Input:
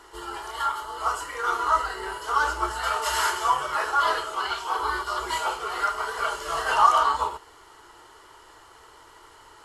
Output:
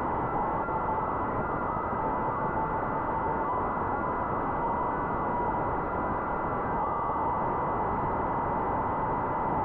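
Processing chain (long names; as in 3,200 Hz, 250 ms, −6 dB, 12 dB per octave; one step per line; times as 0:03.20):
linear delta modulator 32 kbit/s, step −18.5 dBFS
Chebyshev high-pass filter 780 Hz, order 8
in parallel at 0 dB: speech leveller 0.5 s
0:05.52–0:05.96: on the sum: wrap-around overflow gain 13.5 dB
on a send: feedback delay with all-pass diffusion 657 ms, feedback 43%, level −10.5 dB
on the sum: spring reverb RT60 2.1 s, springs 38/54 ms, chirp 30 ms, DRR 1.5 dB
brickwall limiter −10.5 dBFS, peak gain reduction 9.5 dB
comparator with hysteresis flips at −26 dBFS
switching amplifier with a slow clock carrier 2,000 Hz
level −2.5 dB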